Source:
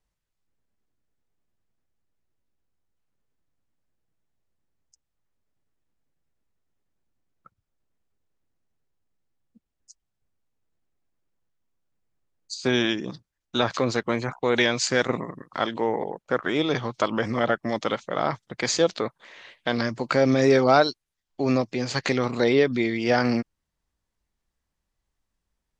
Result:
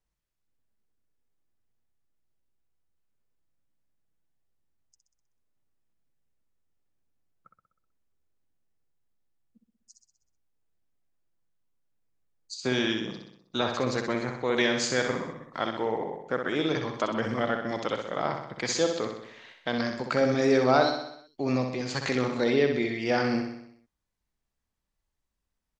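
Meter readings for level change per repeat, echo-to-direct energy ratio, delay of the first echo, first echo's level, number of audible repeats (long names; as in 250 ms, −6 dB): −5.0 dB, −4.5 dB, 63 ms, −6.0 dB, 6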